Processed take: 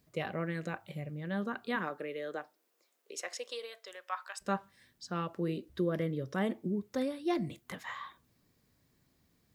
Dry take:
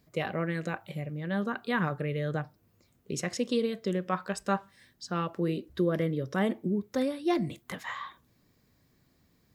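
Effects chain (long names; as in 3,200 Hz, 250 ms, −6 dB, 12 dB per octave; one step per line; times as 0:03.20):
bit reduction 12 bits
0:01.75–0:04.40: high-pass filter 220 Hz → 900 Hz 24 dB per octave
level −4.5 dB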